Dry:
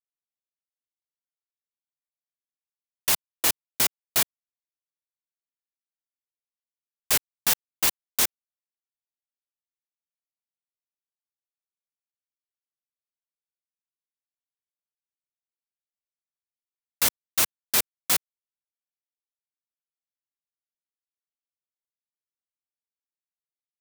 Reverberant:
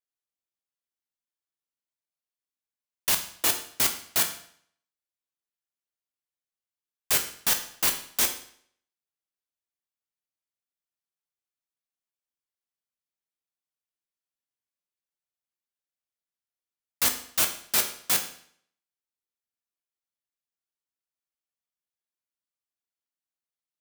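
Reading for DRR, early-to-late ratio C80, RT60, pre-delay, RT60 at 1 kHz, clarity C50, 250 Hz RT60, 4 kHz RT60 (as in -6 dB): 4.5 dB, 13.0 dB, 0.60 s, 11 ms, 0.60 s, 10.0 dB, 0.60 s, 0.55 s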